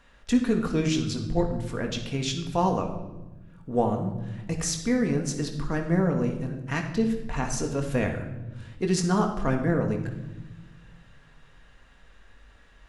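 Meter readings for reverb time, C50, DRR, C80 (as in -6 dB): 1.1 s, 7.5 dB, 2.5 dB, 9.5 dB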